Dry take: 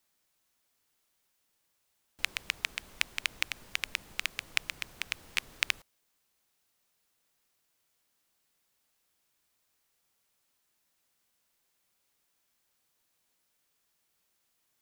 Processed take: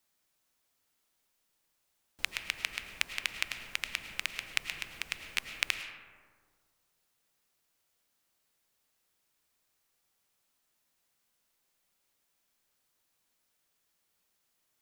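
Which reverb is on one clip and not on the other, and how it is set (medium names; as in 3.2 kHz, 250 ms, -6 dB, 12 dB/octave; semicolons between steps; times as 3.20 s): algorithmic reverb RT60 1.8 s, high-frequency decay 0.35×, pre-delay 65 ms, DRR 7.5 dB; trim -1.5 dB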